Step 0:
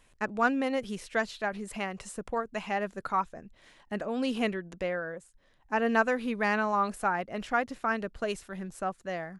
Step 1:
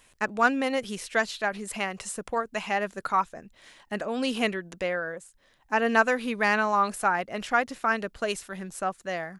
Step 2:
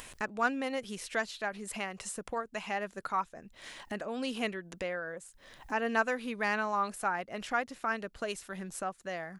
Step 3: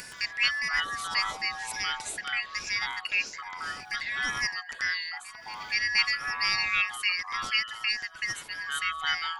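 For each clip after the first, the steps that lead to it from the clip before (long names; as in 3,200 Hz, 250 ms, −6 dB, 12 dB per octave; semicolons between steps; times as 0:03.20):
spectral tilt +1.5 dB per octave; level +4 dB
upward compression, threshold −26 dBFS; level −7.5 dB
band-splitting scrambler in four parts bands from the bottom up 3142; backwards echo 474 ms −20 dB; delay with pitch and tempo change per echo 120 ms, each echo −7 semitones, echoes 2, each echo −6 dB; level +3.5 dB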